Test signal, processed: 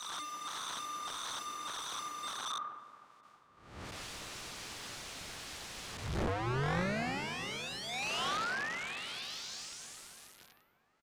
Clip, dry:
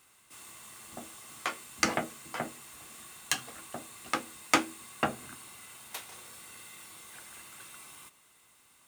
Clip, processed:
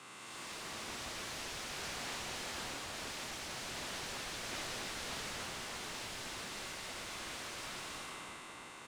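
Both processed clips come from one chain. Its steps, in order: spectral blur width 428 ms; high-pass 85 Hz 12 dB/octave; dynamic bell 610 Hz, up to +4 dB, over -59 dBFS, Q 3.9; reverse; upward compressor, threshold -49 dBFS; reverse; saturation -35.5 dBFS; delay 268 ms -22.5 dB; integer overflow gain 47 dB; distance through air 79 m; feedback echo behind a low-pass 319 ms, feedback 78%, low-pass 1.4 kHz, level -9 dB; three bands expanded up and down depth 100%; trim +14.5 dB

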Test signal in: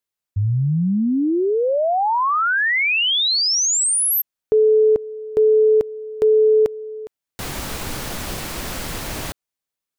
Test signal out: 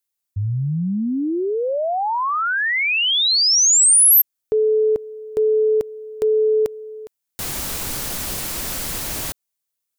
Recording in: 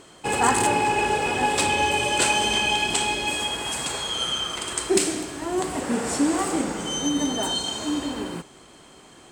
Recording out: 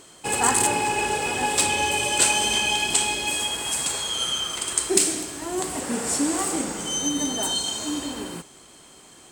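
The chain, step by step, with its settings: treble shelf 5 kHz +11.5 dB; trim -3 dB

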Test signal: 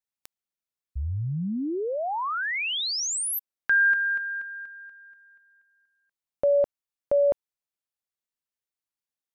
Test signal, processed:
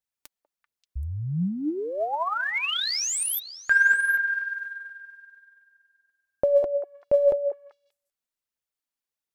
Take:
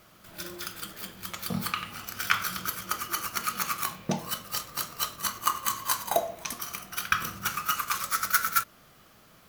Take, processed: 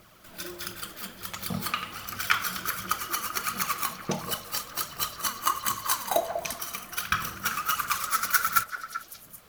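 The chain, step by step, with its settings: phaser 1.4 Hz, delay 4.6 ms, feedback 44%; repeats whose band climbs or falls 194 ms, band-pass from 580 Hz, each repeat 1.4 oct, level -7 dB

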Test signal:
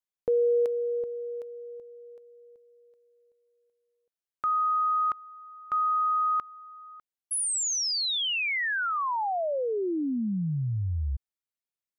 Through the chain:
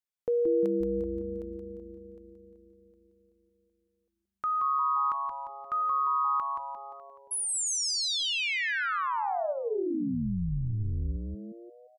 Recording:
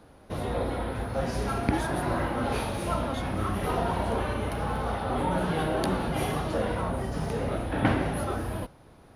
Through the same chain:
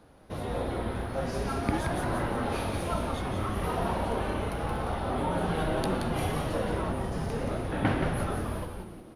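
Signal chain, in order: frequency-shifting echo 175 ms, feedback 50%, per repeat -140 Hz, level -5 dB; trim -3 dB

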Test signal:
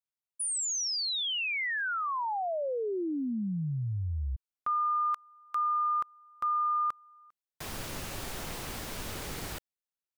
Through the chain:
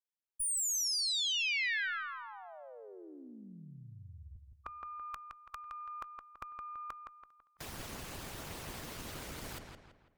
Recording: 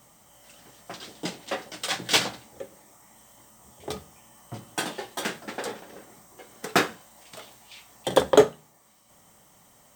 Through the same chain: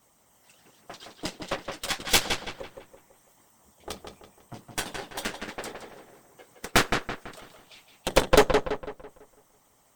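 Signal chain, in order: harmonic-percussive split harmonic -18 dB; Chebyshev shaper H 8 -11 dB, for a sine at -3.5 dBFS; filtered feedback delay 166 ms, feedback 42%, low-pass 3.7 kHz, level -5 dB; trim -2 dB

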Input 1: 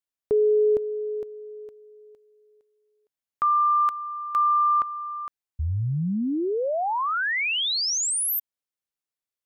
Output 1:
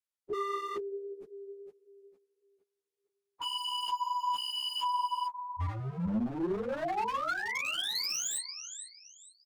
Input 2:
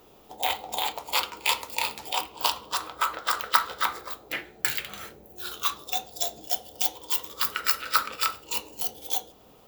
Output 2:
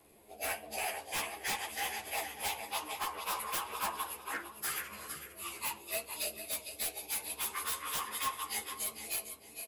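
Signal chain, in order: frequency axis rescaled in octaves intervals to 88%; feedback delay 454 ms, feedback 27%, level -10 dB; wavefolder -23.5 dBFS; three-phase chorus; trim -2 dB

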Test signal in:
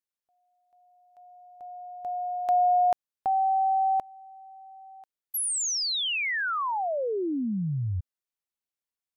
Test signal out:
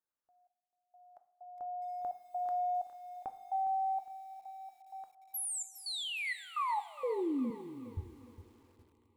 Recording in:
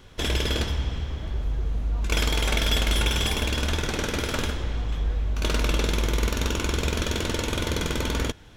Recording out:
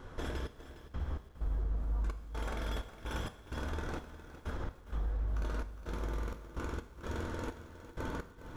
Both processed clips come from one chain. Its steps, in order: resonant high shelf 1.9 kHz -9.5 dB, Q 1.5; hum notches 60/120/180 Hz; compression 3:1, threshold -36 dBFS; peak limiter -30 dBFS; trance gate "xx..x.xxx.xx.x." 64 bpm -24 dB; two-slope reverb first 0.49 s, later 4.9 s, from -18 dB, DRR 9.5 dB; bit-crushed delay 410 ms, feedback 35%, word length 10-bit, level -13 dB; trim +1 dB

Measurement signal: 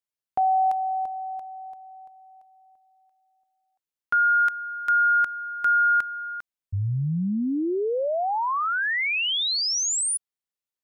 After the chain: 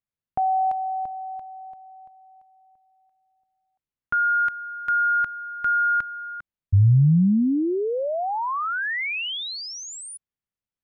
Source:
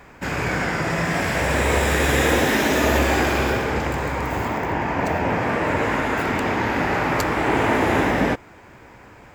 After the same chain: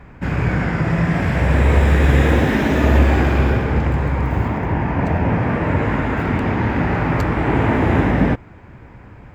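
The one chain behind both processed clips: tone controls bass +12 dB, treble -12 dB; trim -1 dB

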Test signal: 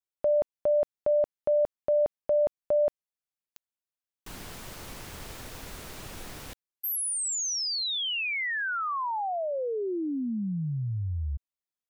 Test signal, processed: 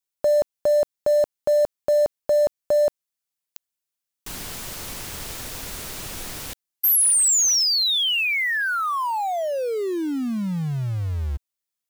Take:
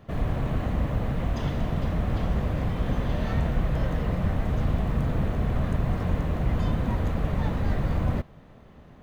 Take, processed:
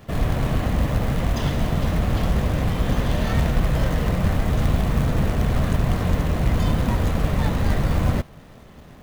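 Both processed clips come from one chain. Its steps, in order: treble shelf 3.2 kHz +8 dB; in parallel at -6.5 dB: companded quantiser 4-bit; on the sum: trim +1.5 dB

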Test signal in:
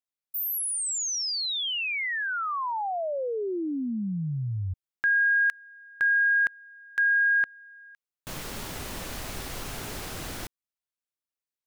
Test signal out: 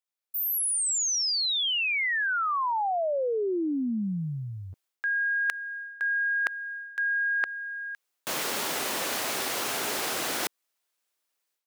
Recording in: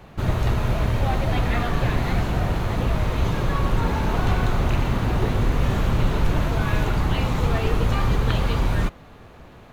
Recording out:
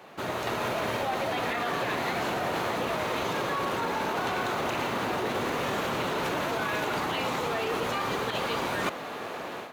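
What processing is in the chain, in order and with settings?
high-pass 360 Hz 12 dB/octave; level rider gain up to 13.5 dB; peak limiter -11.5 dBFS; reverse; compression 6:1, threshold -27 dBFS; reverse

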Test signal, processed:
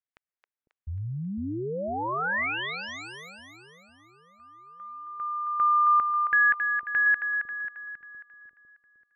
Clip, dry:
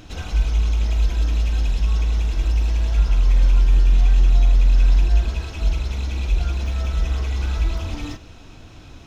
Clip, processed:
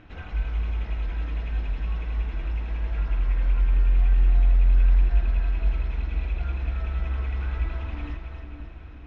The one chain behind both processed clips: resonant low-pass 2 kHz, resonance Q 1.7; two-band feedback delay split 460 Hz, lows 502 ms, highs 270 ms, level -6.5 dB; trim -8 dB

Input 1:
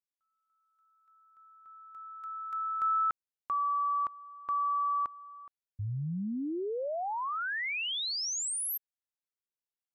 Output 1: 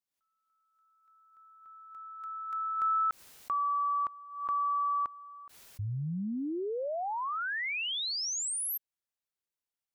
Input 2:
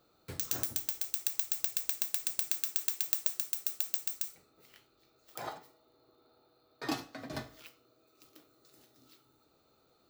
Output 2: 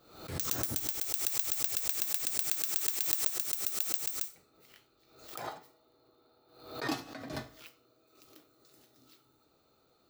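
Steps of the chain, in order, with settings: swell ahead of each attack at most 84 dB/s

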